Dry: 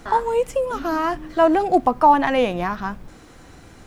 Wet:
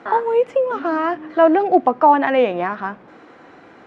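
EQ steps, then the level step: dynamic EQ 1000 Hz, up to -5 dB, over -29 dBFS, Q 1.4; BPF 310–2100 Hz; +5.5 dB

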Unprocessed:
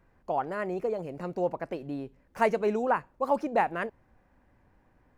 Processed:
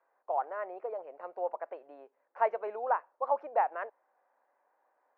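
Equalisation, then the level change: HPF 580 Hz 24 dB/oct; LPF 1200 Hz 12 dB/oct; air absorption 80 m; 0.0 dB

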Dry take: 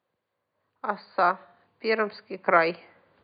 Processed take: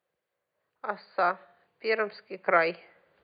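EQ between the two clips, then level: fifteen-band EQ 100 Hz -12 dB, 250 Hz -11 dB, 1000 Hz -7 dB, 4000 Hz -4 dB; 0.0 dB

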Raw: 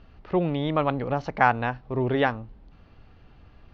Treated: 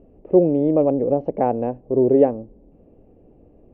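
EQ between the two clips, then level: EQ curve 110 Hz 0 dB, 310 Hz +14 dB, 540 Hz +15 dB, 1400 Hz -19 dB, 2600 Hz -13 dB, 3900 Hz -30 dB; -3.5 dB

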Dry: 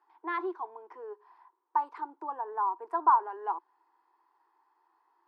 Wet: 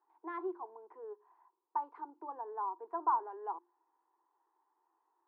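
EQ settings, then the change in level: band-pass 370 Hz, Q 0.61; notches 50/100/150/200/250/300/350 Hz; -3.5 dB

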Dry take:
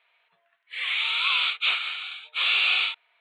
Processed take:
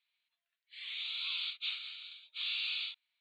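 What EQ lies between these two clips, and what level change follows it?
band-pass 4600 Hz, Q 4.5; -2.0 dB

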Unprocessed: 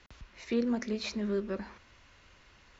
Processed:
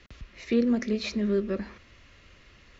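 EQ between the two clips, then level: bell 890 Hz -10 dB 0.65 oct; high shelf 5100 Hz -8 dB; notch 1500 Hz, Q 12; +6.5 dB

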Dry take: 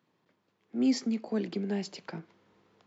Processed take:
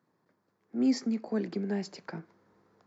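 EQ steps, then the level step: EQ curve 1700 Hz 0 dB, 3000 Hz -14 dB, 4700 Hz -3 dB; dynamic EQ 2600 Hz, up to +5 dB, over -59 dBFS, Q 1.4; 0.0 dB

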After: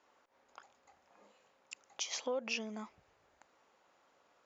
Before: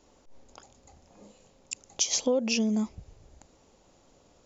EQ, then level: band-pass 1500 Hz, Q 1.4; +1.0 dB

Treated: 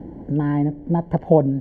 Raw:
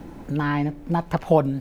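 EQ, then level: running mean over 35 samples; HPF 48 Hz; bell 120 Hz -2 dB 2.1 oct; +6.0 dB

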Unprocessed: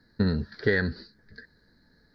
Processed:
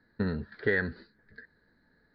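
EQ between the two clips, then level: LPF 3200 Hz 24 dB/oct; low shelf 260 Hz -7 dB; -1.5 dB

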